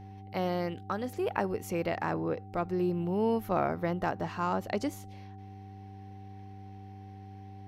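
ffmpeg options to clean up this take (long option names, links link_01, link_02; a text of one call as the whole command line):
ffmpeg -i in.wav -af "bandreject=frequency=99.3:width_type=h:width=4,bandreject=frequency=198.6:width_type=h:width=4,bandreject=frequency=297.9:width_type=h:width=4,bandreject=frequency=397.2:width_type=h:width=4,bandreject=frequency=770:width=30" out.wav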